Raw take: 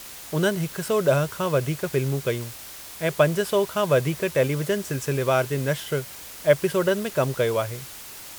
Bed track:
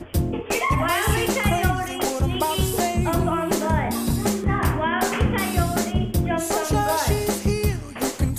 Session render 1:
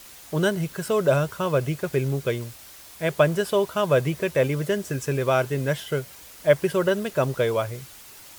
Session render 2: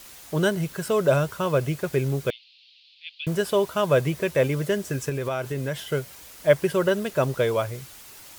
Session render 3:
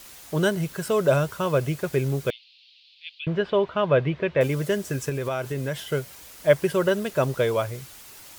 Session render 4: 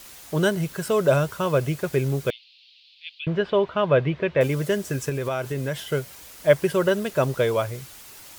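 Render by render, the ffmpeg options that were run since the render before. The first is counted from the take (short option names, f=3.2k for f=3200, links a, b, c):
-af "afftdn=nr=6:nf=-41"
-filter_complex "[0:a]asettb=1/sr,asplit=3[a][b][c];[a]atrim=end=2.304[d];[b]atrim=start=2.3:end=3.27,asetpts=PTS-STARTPTS,afade=t=in:d=0.004:c=qsin,afade=t=out:st=0.966:d=0.004:c=qsin,asuperpass=centerf=3400:order=8:qfactor=1.7[e];[c]atrim=start=3.266[f];[d][e]acrossfade=d=0.004:c1=hsin:c2=qsin[g];[g][f]acrossfade=d=0.004:c1=qsin:c2=hsin,asettb=1/sr,asplit=3[h][i][j];[h]atrim=end=5.094[k];[i]atrim=start=5.09:end=5.89,asetpts=PTS-STARTPTS,afade=t=in:d=0.004:c=qsin,afade=t=out:st=0.796:d=0.004:c=qsin,acompressor=threshold=-25dB:ratio=3:attack=3.2:release=140:knee=1:detection=peak[l];[j]atrim=start=5.886[m];[k][l]acrossfade=d=0.004:c1=hsin:c2=qsin[n];[n][m]acrossfade=d=0.004:c1=qsin:c2=hsin"
-filter_complex "[0:a]asettb=1/sr,asplit=3[a][b][c];[a]atrim=end=3.194[d];[b]atrim=start=3.19:end=4.41,asetpts=PTS-STARTPTS,afade=t=in:d=0.004:c=qsin,afade=t=out:st=1.216:d=0.004:c=qsin,lowpass=f=3.4k:w=0.5412,lowpass=f=3.4k:w=1.3066[e];[c]atrim=start=4.406[f];[d][e]acrossfade=d=0.004:c1=hsin:c2=qsin[g];[g][f]acrossfade=d=0.004:c1=qsin:c2=hsin"
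-af "volume=1dB"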